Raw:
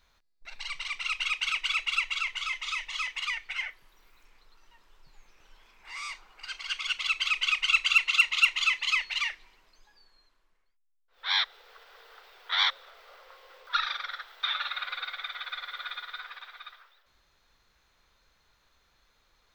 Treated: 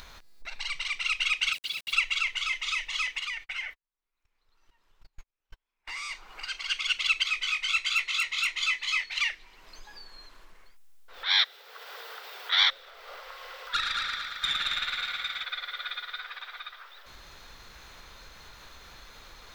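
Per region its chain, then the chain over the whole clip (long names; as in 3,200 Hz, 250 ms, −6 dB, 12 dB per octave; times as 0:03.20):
0:01.53–0:01.93: resonant band-pass 4,200 Hz, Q 3.3 + centre clipping without the shift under −44 dBFS
0:03.18–0:06.11: noise gate −49 dBFS, range −47 dB + downward compressor 2 to 1, threshold −37 dBFS
0:07.23–0:09.18: notch filter 2,800 Hz, Q 7.8 + chorus effect 1.4 Hz, delay 17 ms, depth 3.6 ms
0:11.39–0:12.60: high-pass filter 160 Hz 24 dB per octave + high-shelf EQ 6,700 Hz +7 dB + mains-hum notches 60/120/180/240/300/360/420/480 Hz
0:13.20–0:15.44: parametric band 250 Hz −9.5 dB 1.9 octaves + tube saturation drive 20 dB, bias 0.3 + echo machine with several playback heads 112 ms, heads first and second, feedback 52%, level −6.5 dB
whole clip: upward compression, threshold −38 dBFS; dynamic equaliser 1,000 Hz, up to −7 dB, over −48 dBFS, Q 1.6; level +3.5 dB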